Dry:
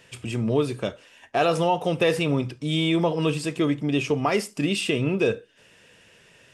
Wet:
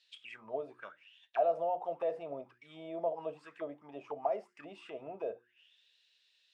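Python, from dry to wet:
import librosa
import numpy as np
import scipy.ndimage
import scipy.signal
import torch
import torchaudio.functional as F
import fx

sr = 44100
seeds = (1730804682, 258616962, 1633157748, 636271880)

y = fx.auto_wah(x, sr, base_hz=640.0, top_hz=4200.0, q=9.6, full_db=-19.0, direction='down')
y = fx.hum_notches(y, sr, base_hz=60, count=6)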